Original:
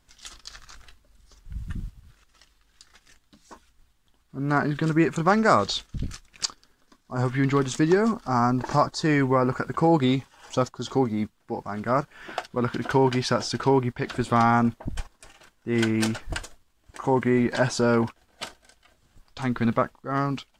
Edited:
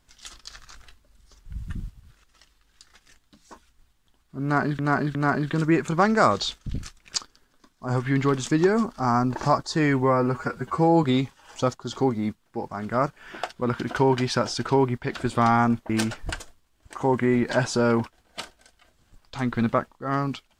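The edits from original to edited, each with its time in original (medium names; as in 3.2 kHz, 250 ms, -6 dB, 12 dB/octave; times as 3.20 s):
4.43–4.79 s: loop, 3 plays
9.31–9.98 s: stretch 1.5×
14.84–15.93 s: delete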